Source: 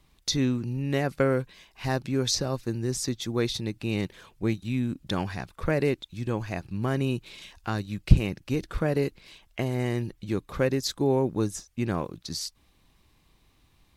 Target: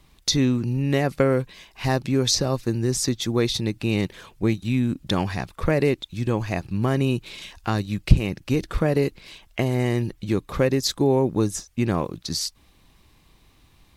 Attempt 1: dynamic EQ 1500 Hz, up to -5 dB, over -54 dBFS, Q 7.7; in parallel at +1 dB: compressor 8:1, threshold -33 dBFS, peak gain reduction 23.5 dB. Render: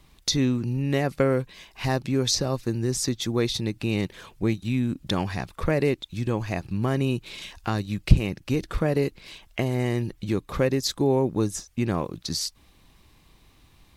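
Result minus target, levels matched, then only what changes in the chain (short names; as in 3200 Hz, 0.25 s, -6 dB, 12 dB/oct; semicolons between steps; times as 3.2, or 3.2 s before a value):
compressor: peak gain reduction +8 dB
change: compressor 8:1, threshold -24 dBFS, peak gain reduction 16 dB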